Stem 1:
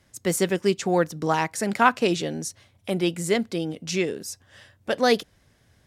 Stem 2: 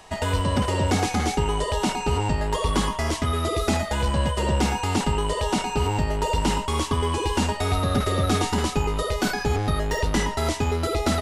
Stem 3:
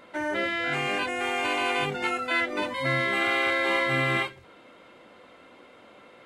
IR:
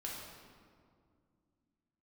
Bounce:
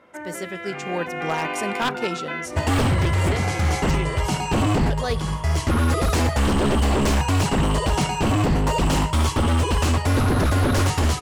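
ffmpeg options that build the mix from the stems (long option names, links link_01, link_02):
-filter_complex "[0:a]equalizer=frequency=270:width_type=o:width=0.39:gain=-6.5,volume=-11dB,asplit=3[link_01][link_02][link_03];[link_02]volume=-15dB[link_04];[1:a]lowshelf=frequency=180:width_type=q:width=3:gain=8,bandreject=frequency=3700:width=13,adelay=2450,volume=-0.5dB,asplit=2[link_05][link_06];[link_06]volume=-17.5dB[link_07];[2:a]acompressor=threshold=-29dB:ratio=6,lowpass=2400,volume=-2.5dB[link_08];[link_03]apad=whole_len=602487[link_09];[link_05][link_09]sidechaincompress=threshold=-39dB:ratio=5:attack=11:release=630[link_10];[3:a]atrim=start_sample=2205[link_11];[link_04][link_11]afir=irnorm=-1:irlink=0[link_12];[link_07]aecho=0:1:71:1[link_13];[link_01][link_10][link_08][link_12][link_13]amix=inputs=5:normalize=0,highpass=frequency=50:width=0.5412,highpass=frequency=50:width=1.3066,dynaudnorm=framelen=250:gausssize=9:maxgain=12dB,aeval=exprs='0.2*(abs(mod(val(0)/0.2+3,4)-2)-1)':channel_layout=same"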